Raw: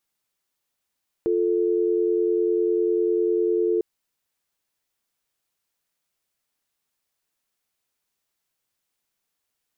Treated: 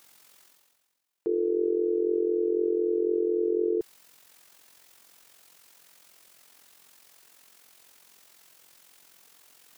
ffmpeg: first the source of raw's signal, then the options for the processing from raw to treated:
-f lavfi -i "aevalsrc='0.0841*(sin(2*PI*350*t)+sin(2*PI*440*t))':d=2.55:s=44100"
-af "highpass=f=230:p=1,areverse,acompressor=mode=upward:threshold=-33dB:ratio=2.5,areverse,tremolo=f=44:d=0.621"

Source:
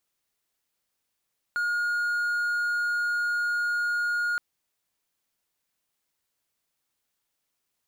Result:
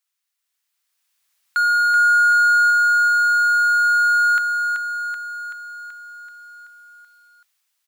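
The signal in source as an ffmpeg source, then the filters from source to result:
-f lavfi -i "aevalsrc='0.0794*(1-4*abs(mod(1430*t+0.25,1)-0.5))':d=2.82:s=44100"
-af "highpass=1.2k,dynaudnorm=f=420:g=5:m=12dB,aecho=1:1:381|762|1143|1524|1905|2286|2667|3048:0.531|0.319|0.191|0.115|0.0688|0.0413|0.0248|0.0149"

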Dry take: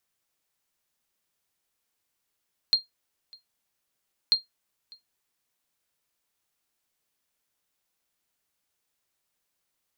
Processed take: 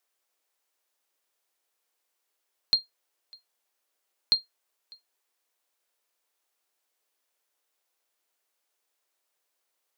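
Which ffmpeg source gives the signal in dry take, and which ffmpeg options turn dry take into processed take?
-f lavfi -i "aevalsrc='0.251*(sin(2*PI*4210*mod(t,1.59))*exp(-6.91*mod(t,1.59)/0.15)+0.0447*sin(2*PI*4210*max(mod(t,1.59)-0.6,0))*exp(-6.91*max(mod(t,1.59)-0.6,0)/0.15))':d=3.18:s=44100"
-filter_complex "[0:a]lowshelf=f=490:g=11.5,acrossover=split=390[a][b];[a]acrusher=bits=4:dc=4:mix=0:aa=0.000001[c];[c][b]amix=inputs=2:normalize=0"

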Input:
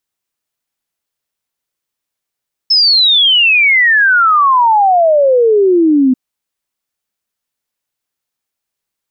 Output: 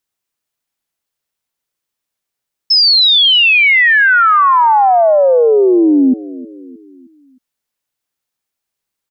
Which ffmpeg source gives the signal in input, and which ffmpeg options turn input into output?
-f lavfi -i "aevalsrc='0.501*clip(min(t,3.44-t)/0.01,0,1)*sin(2*PI*5300*3.44/log(250/5300)*(exp(log(250/5300)*t/3.44)-1))':d=3.44:s=44100"
-filter_complex "[0:a]asplit=2[a][b];[b]adelay=311,lowpass=f=2.7k:p=1,volume=-18dB,asplit=2[c][d];[d]adelay=311,lowpass=f=2.7k:p=1,volume=0.47,asplit=2[e][f];[f]adelay=311,lowpass=f=2.7k:p=1,volume=0.47,asplit=2[g][h];[h]adelay=311,lowpass=f=2.7k:p=1,volume=0.47[i];[a][c][e][g][i]amix=inputs=5:normalize=0"

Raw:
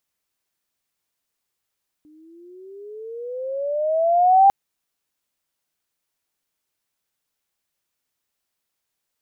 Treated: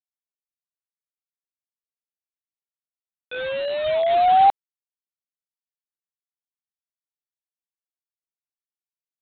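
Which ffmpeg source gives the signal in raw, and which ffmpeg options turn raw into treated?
-f lavfi -i "aevalsrc='pow(10,(-8.5+39*(t/2.45-1))/20)*sin(2*PI*299*2.45/(17*log(2)/12)*(exp(17*log(2)/12*t/2.45)-1))':d=2.45:s=44100"
-af "highpass=440,aresample=8000,acrusher=bits=4:mix=0:aa=0.000001,aresample=44100"

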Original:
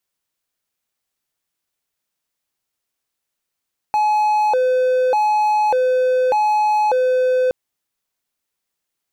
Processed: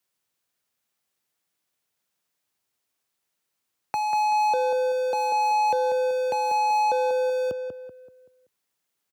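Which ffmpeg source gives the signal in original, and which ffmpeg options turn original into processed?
-f lavfi -i "aevalsrc='0.266*(1-4*abs(mod((678.5*t+169.5/0.84*(0.5-abs(mod(0.84*t,1)-0.5)))+0.25,1)-0.5))':d=3.57:s=44100"
-filter_complex "[0:a]highpass=f=81:w=0.5412,highpass=f=81:w=1.3066,acrossover=split=290|3000[a][b][c];[b]acompressor=threshold=-34dB:ratio=2[d];[a][d][c]amix=inputs=3:normalize=0,asplit=2[e][f];[f]adelay=191,lowpass=f=2.3k:p=1,volume=-6dB,asplit=2[g][h];[h]adelay=191,lowpass=f=2.3k:p=1,volume=0.41,asplit=2[i][j];[j]adelay=191,lowpass=f=2.3k:p=1,volume=0.41,asplit=2[k][l];[l]adelay=191,lowpass=f=2.3k:p=1,volume=0.41,asplit=2[m][n];[n]adelay=191,lowpass=f=2.3k:p=1,volume=0.41[o];[g][i][k][m][o]amix=inputs=5:normalize=0[p];[e][p]amix=inputs=2:normalize=0"

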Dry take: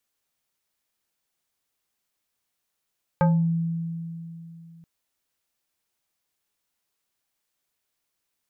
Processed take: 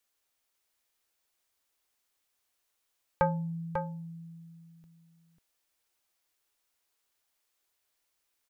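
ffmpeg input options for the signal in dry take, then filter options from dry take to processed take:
-f lavfi -i "aevalsrc='0.178*pow(10,-3*t/3.11)*sin(2*PI*166*t+1.3*pow(10,-3*t/0.35)*sin(2*PI*4.25*166*t))':d=1.63:s=44100"
-filter_complex "[0:a]equalizer=f=160:w=1.4:g=-12,asplit=2[a][b];[b]aecho=0:1:544:0.473[c];[a][c]amix=inputs=2:normalize=0"

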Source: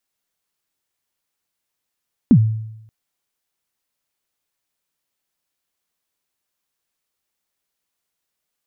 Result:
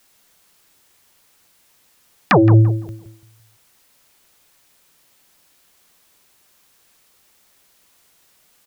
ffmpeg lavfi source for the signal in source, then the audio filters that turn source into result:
-f lavfi -i "aevalsrc='0.596*pow(10,-3*t/0.85)*sin(2*PI*(280*0.071/log(110/280)*(exp(log(110/280)*min(t,0.071)/0.071)-1)+110*max(t-0.071,0)))':d=0.58:s=44100"
-filter_complex "[0:a]acompressor=threshold=-20dB:ratio=2.5,aeval=exprs='0.422*sin(PI/2*7.94*val(0)/0.422)':c=same,asplit=2[a][b];[b]adelay=169,lowpass=f=1k:p=1,volume=-10dB,asplit=2[c][d];[d]adelay=169,lowpass=f=1k:p=1,volume=0.36,asplit=2[e][f];[f]adelay=169,lowpass=f=1k:p=1,volume=0.36,asplit=2[g][h];[h]adelay=169,lowpass=f=1k:p=1,volume=0.36[i];[c][e][g][i]amix=inputs=4:normalize=0[j];[a][j]amix=inputs=2:normalize=0"

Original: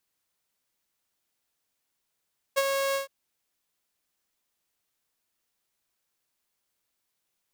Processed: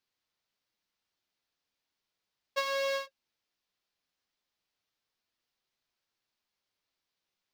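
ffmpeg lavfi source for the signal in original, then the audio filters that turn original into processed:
-f lavfi -i "aevalsrc='0.141*(2*mod(548*t,1)-1)':d=0.515:s=44100,afade=t=in:d=0.021,afade=t=out:st=0.021:d=0.039:silence=0.531,afade=t=out:st=0.39:d=0.125"
-af "flanger=delay=7.6:depth=4.2:regen=-40:speed=0.35:shape=triangular,highshelf=f=6.5k:t=q:w=1.5:g=-10"

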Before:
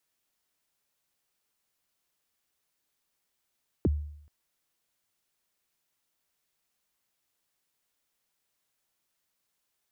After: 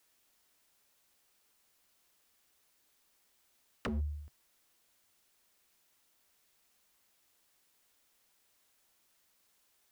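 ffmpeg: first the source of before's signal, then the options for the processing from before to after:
-f lavfi -i "aevalsrc='0.112*pow(10,-3*t/0.7)*sin(2*PI*(460*0.029/log(74/460)*(exp(log(74/460)*min(t,0.029)/0.029)-1)+74*max(t-0.029,0)))':d=0.43:s=44100"
-filter_complex "[0:a]equalizer=f=140:t=o:w=0.24:g=-12.5,asplit=2[a][b];[b]acompressor=threshold=-37dB:ratio=16,volume=2.5dB[c];[a][c]amix=inputs=2:normalize=0,aeval=exprs='0.0335*(abs(mod(val(0)/0.0335+3,4)-2)-1)':c=same"

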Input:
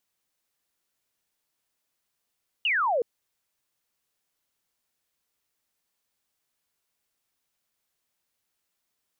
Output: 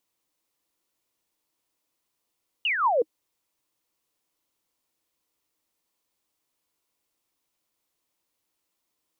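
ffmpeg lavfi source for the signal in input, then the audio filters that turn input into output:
-f lavfi -i "aevalsrc='0.0841*clip(t/0.002,0,1)*clip((0.37-t)/0.002,0,1)*sin(2*PI*3000*0.37/log(440/3000)*(exp(log(440/3000)*t/0.37)-1))':d=0.37:s=44100"
-af "equalizer=f=315:t=o:w=0.33:g=9,equalizer=f=500:t=o:w=0.33:g=4,equalizer=f=1k:t=o:w=0.33:g=5,equalizer=f=1.6k:t=o:w=0.33:g=-5"

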